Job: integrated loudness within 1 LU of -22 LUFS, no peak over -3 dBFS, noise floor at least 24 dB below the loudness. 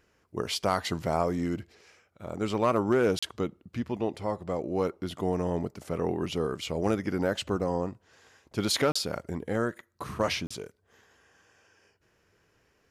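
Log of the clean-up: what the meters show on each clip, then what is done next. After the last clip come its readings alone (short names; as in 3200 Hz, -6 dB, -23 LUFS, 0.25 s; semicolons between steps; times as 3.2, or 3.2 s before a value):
dropouts 3; longest dropout 35 ms; loudness -30.0 LUFS; peak -13.0 dBFS; loudness target -22.0 LUFS
-> interpolate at 3.19/8.92/10.47, 35 ms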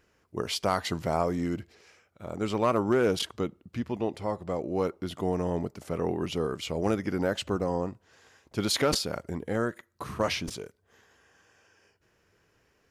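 dropouts 0; loudness -30.0 LUFS; peak -13.0 dBFS; loudness target -22.0 LUFS
-> gain +8 dB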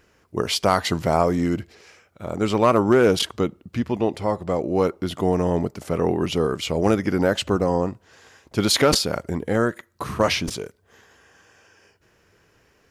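loudness -22.0 LUFS; peak -5.0 dBFS; noise floor -62 dBFS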